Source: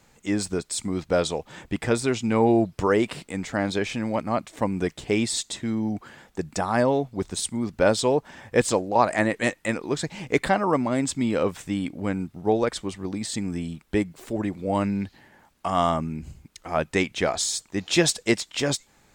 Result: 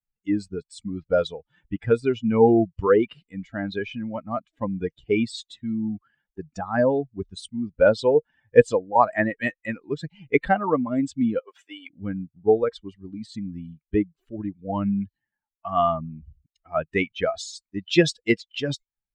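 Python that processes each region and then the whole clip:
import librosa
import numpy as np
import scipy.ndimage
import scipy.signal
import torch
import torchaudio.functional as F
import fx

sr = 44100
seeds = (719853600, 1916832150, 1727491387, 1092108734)

y = fx.chain(x, sr, fx.highpass(hz=410.0, slope=24),
    fx.over_compress(threshold_db=-31.0, ratio=-0.5), at=(11.39, 11.9))
y = fx.bin_expand(y, sr, power=2.0)
y = scipy.signal.sosfilt(scipy.signal.butter(2, 3500.0, 'lowpass', fs=sr, output='sos'), y)
y = fx.dynamic_eq(y, sr, hz=470.0, q=6.9, threshold_db=-45.0, ratio=4.0, max_db=7)
y = y * 10.0 ** (5.0 / 20.0)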